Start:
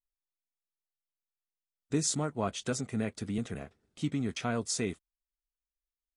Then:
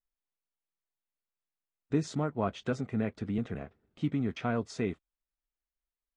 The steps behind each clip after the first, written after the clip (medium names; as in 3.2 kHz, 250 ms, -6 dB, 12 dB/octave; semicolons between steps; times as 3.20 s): Bessel low-pass 2.1 kHz, order 2; trim +1.5 dB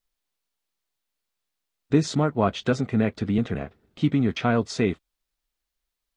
peaking EQ 4 kHz +4.5 dB 1 oct; trim +9 dB